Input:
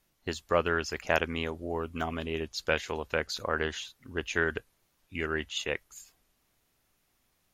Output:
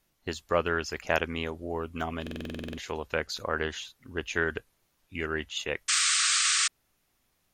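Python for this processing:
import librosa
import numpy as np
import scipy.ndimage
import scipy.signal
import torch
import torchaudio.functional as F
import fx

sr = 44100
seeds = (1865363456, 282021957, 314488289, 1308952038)

y = fx.spec_paint(x, sr, seeds[0], shape='noise', start_s=5.88, length_s=0.8, low_hz=1100.0, high_hz=9000.0, level_db=-25.0)
y = fx.buffer_glitch(y, sr, at_s=(2.22,), block=2048, repeats=11)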